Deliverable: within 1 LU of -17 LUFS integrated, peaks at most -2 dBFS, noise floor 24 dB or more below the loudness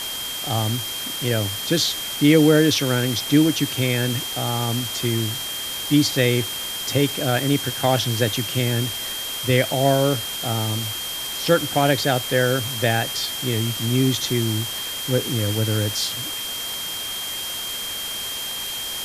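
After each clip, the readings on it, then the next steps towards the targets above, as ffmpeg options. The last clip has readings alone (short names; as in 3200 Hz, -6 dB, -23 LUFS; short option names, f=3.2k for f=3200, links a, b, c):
steady tone 3200 Hz; tone level -29 dBFS; noise floor -29 dBFS; noise floor target -46 dBFS; loudness -21.5 LUFS; peak -3.5 dBFS; loudness target -17.0 LUFS
-> -af "bandreject=f=3.2k:w=30"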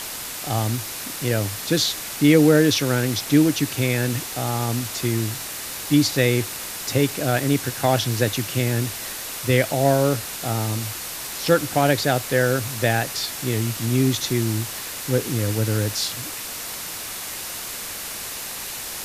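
steady tone none; noise floor -32 dBFS; noise floor target -46 dBFS
-> -af "afftdn=nr=14:nf=-32"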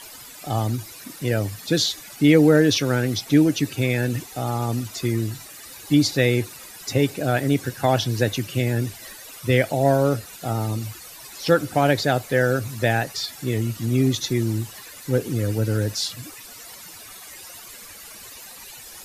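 noise floor -42 dBFS; noise floor target -46 dBFS
-> -af "afftdn=nr=6:nf=-42"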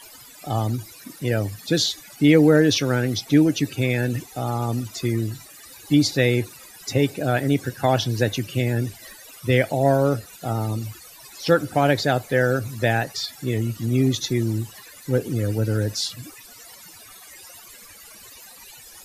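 noise floor -45 dBFS; noise floor target -46 dBFS
-> -af "afftdn=nr=6:nf=-45"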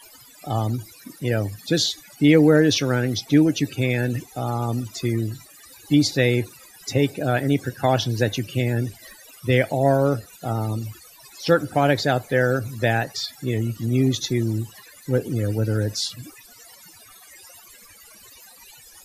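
noise floor -48 dBFS; loudness -22.0 LUFS; peak -4.0 dBFS; loudness target -17.0 LUFS
-> -af "volume=5dB,alimiter=limit=-2dB:level=0:latency=1"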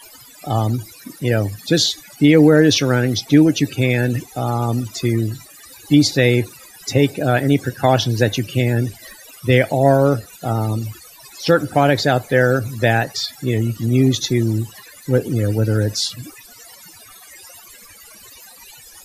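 loudness -17.5 LUFS; peak -2.0 dBFS; noise floor -43 dBFS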